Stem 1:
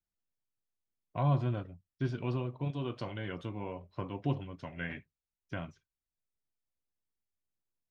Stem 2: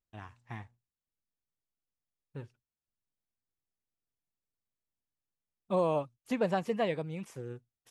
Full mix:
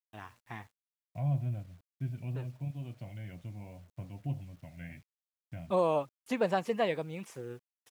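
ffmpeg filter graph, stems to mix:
ffmpeg -i stem1.wav -i stem2.wav -filter_complex "[0:a]firequalizer=gain_entry='entry(120,0);entry(240,-7);entry(420,-19);entry(650,-5);entry(1100,-22);entry(2200,-6);entry(3800,-19)':delay=0.05:min_phase=1,volume=-0.5dB[link_01];[1:a]lowshelf=frequency=200:gain=-8,volume=2dB[link_02];[link_01][link_02]amix=inputs=2:normalize=0,acrusher=bits=10:mix=0:aa=0.000001" out.wav

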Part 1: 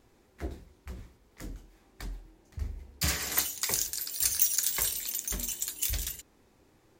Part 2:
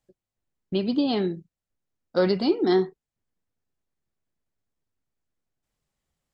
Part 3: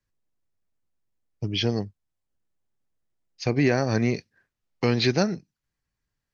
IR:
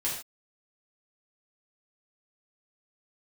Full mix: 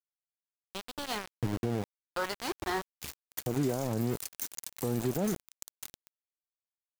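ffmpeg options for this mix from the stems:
-filter_complex "[0:a]highpass=frequency=47:width=0.5412,highpass=frequency=47:width=1.3066,volume=-9dB[link_01];[1:a]firequalizer=gain_entry='entry(110,0);entry(160,-13);entry(1000,12);entry(3400,-2);entry(6800,3)':delay=0.05:min_phase=1,volume=-6.5dB[link_02];[2:a]lowpass=frequency=1100:width=0.5412,lowpass=frequency=1100:width=1.3066,volume=-1.5dB[link_03];[link_01][link_02][link_03]amix=inputs=3:normalize=0,aeval=exprs='val(0)*gte(abs(val(0)),0.0299)':channel_layout=same,alimiter=limit=-21.5dB:level=0:latency=1:release=48"

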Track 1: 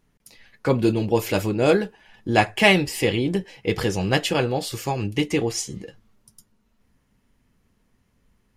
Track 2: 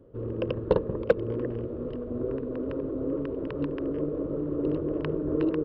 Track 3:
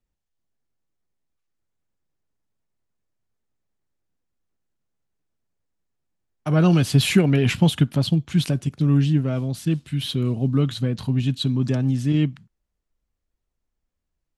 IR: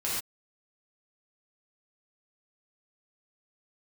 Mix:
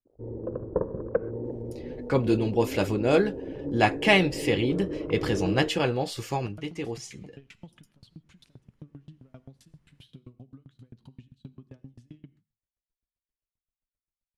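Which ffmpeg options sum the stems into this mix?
-filter_complex "[0:a]adelay=1450,volume=-3.5dB[link_01];[1:a]afwtdn=0.0126,lowpass=frequency=1700:width=0.5412,lowpass=frequency=1700:width=1.3066,bandreject=frequency=850:width=12,adelay=50,volume=-4.5dB,asplit=2[link_02][link_03];[link_03]volume=-20dB[link_04];[2:a]acompressor=threshold=-27dB:ratio=12,aeval=exprs='val(0)*pow(10,-38*if(lt(mod(7.6*n/s,1),2*abs(7.6)/1000),1-mod(7.6*n/s,1)/(2*abs(7.6)/1000),(mod(7.6*n/s,1)-2*abs(7.6)/1000)/(1-2*abs(7.6)/1000))/20)':channel_layout=same,volume=-9.5dB,asplit=3[link_05][link_06][link_07];[link_06]volume=-23.5dB[link_08];[link_07]apad=whole_len=441605[link_09];[link_01][link_09]sidechaincompress=threshold=-48dB:ratio=10:attack=11:release=789[link_10];[3:a]atrim=start_sample=2205[link_11];[link_04][link_08]amix=inputs=2:normalize=0[link_12];[link_12][link_11]afir=irnorm=-1:irlink=0[link_13];[link_10][link_02][link_05][link_13]amix=inputs=4:normalize=0,highshelf=frequency=9400:gain=-11"

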